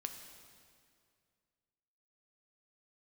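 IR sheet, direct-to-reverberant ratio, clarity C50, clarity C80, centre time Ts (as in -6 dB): 5.0 dB, 7.0 dB, 8.0 dB, 36 ms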